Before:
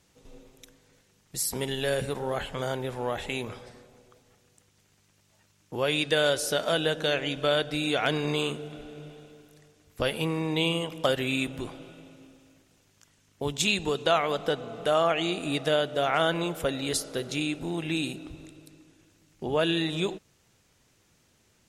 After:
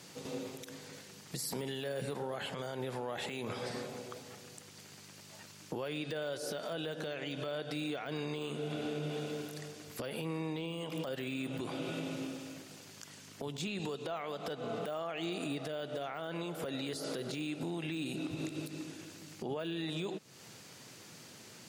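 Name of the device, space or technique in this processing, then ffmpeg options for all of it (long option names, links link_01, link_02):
broadcast voice chain: -af "highpass=frequency=120:width=0.5412,highpass=frequency=120:width=1.3066,deesser=1,acompressor=threshold=-45dB:ratio=4,equalizer=frequency=4600:width_type=o:width=0.22:gain=5.5,alimiter=level_in=17.5dB:limit=-24dB:level=0:latency=1:release=97,volume=-17.5dB,volume=12.5dB"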